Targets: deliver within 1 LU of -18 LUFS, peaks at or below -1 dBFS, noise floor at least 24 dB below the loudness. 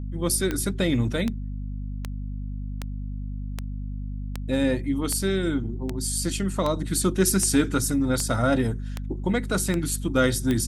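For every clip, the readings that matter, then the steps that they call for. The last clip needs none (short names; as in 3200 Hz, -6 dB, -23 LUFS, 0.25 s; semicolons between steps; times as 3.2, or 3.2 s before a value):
clicks 14; hum 50 Hz; harmonics up to 250 Hz; hum level -29 dBFS; loudness -26.0 LUFS; peak -8.0 dBFS; loudness target -18.0 LUFS
-> de-click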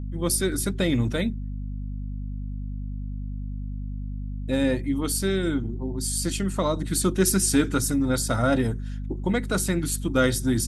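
clicks 0; hum 50 Hz; harmonics up to 250 Hz; hum level -29 dBFS
-> notches 50/100/150/200/250 Hz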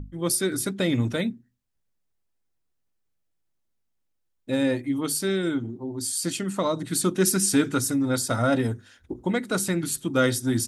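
hum none; loudness -25.0 LUFS; peak -8.5 dBFS; loudness target -18.0 LUFS
-> gain +7 dB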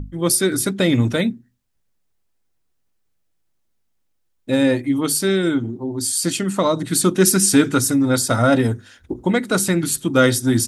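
loudness -18.0 LUFS; peak -1.5 dBFS; noise floor -67 dBFS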